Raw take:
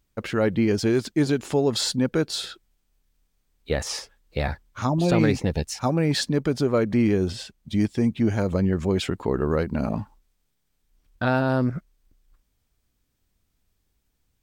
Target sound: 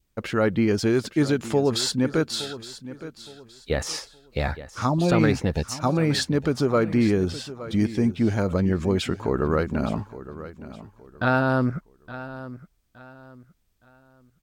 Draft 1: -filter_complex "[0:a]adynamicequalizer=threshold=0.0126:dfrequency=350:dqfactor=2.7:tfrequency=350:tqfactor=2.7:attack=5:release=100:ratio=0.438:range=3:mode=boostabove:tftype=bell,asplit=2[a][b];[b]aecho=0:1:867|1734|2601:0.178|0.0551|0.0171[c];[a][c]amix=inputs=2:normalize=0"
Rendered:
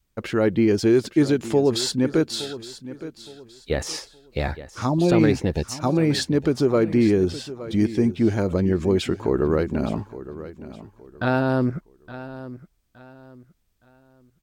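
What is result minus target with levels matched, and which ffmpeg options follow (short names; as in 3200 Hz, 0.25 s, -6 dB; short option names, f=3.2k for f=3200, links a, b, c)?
1000 Hz band -3.5 dB
-filter_complex "[0:a]adynamicequalizer=threshold=0.0126:dfrequency=1300:dqfactor=2.7:tfrequency=1300:tqfactor=2.7:attack=5:release=100:ratio=0.438:range=3:mode=boostabove:tftype=bell,asplit=2[a][b];[b]aecho=0:1:867|1734|2601:0.178|0.0551|0.0171[c];[a][c]amix=inputs=2:normalize=0"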